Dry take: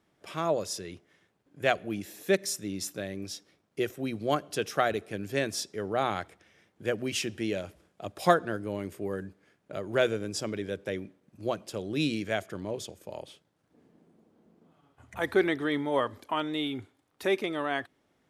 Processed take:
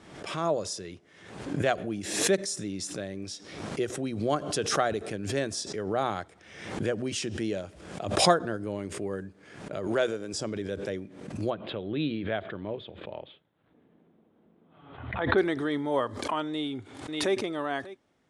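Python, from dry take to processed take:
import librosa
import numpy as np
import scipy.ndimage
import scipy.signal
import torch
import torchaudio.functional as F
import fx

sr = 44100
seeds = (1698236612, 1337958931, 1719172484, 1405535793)

y = fx.highpass(x, sr, hz=320.0, slope=6, at=(9.87, 10.34))
y = fx.ellip_lowpass(y, sr, hz=3700.0, order=4, stop_db=40, at=(11.5, 15.38))
y = fx.echo_throw(y, sr, start_s=16.49, length_s=0.88, ms=590, feedback_pct=10, wet_db=-17.5)
y = scipy.signal.sosfilt(scipy.signal.butter(8, 10000.0, 'lowpass', fs=sr, output='sos'), y)
y = fx.dynamic_eq(y, sr, hz=2400.0, q=1.6, threshold_db=-48.0, ratio=4.0, max_db=-6)
y = fx.pre_swell(y, sr, db_per_s=63.0)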